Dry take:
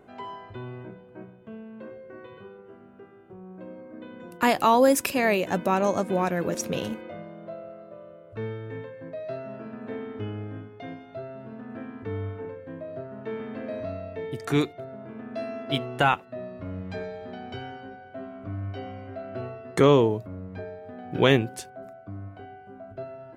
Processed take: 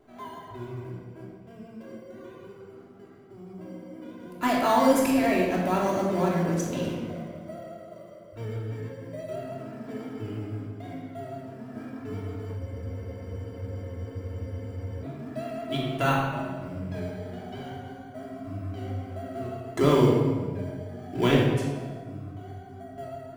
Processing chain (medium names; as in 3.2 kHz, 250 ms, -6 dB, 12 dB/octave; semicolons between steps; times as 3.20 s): vibrato 6.1 Hz 73 cents; feedback comb 89 Hz, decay 1.4 s, mix 60%; in parallel at -10 dB: sample-and-hold 17×; on the sum: simulated room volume 1300 m³, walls mixed, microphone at 3 m; spectral freeze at 12.62 s, 2.41 s; trim -2 dB